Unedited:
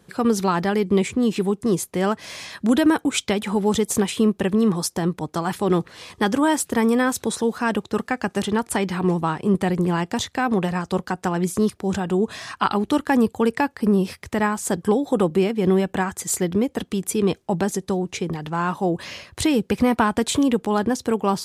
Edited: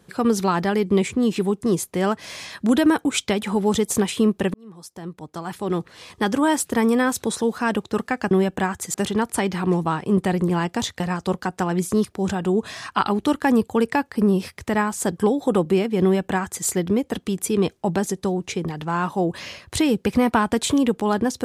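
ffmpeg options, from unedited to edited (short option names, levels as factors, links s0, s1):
-filter_complex "[0:a]asplit=5[s0][s1][s2][s3][s4];[s0]atrim=end=4.54,asetpts=PTS-STARTPTS,afade=t=out:st=4.536:d=0.004:c=hsin[s5];[s1]atrim=start=4.54:end=8.312,asetpts=PTS-STARTPTS,afade=t=in:d=1.97[s6];[s2]atrim=start=15.678:end=16.312[s7];[s3]atrim=start=8.308:end=10.372[s8];[s4]atrim=start=10.648[s9];[s5][s6]concat=n=2:v=0:a=1[s10];[s10][s7]acrossfade=d=0.004:c1=hsin:c2=hsin[s11];[s11][s8]acrossfade=d=0.004:c1=hsin:c2=hsin[s12];[s12][s9]acrossfade=d=0.004:c1=hsin:c2=hsin"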